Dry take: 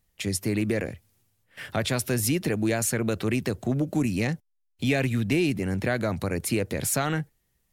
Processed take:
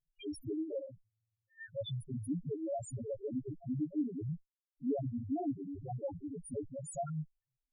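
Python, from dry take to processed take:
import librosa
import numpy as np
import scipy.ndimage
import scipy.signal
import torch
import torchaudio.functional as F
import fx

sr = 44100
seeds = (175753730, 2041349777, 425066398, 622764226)

y = fx.lower_of_two(x, sr, delay_ms=7.2)
y = fx.bass_treble(y, sr, bass_db=-6, treble_db=-1)
y = fx.spec_topn(y, sr, count=1)
y = F.gain(torch.from_numpy(y), 1.5).numpy()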